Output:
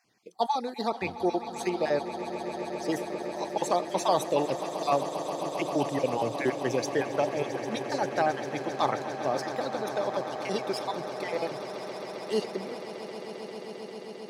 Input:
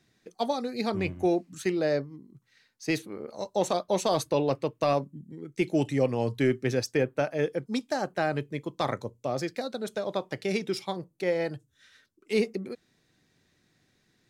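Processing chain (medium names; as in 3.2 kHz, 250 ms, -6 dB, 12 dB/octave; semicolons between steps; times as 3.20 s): random holes in the spectrogram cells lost 27%; high-pass 280 Hz 6 dB/octave; peaking EQ 880 Hz +7 dB 0.61 oct; echo with a slow build-up 133 ms, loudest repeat 8, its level -15 dB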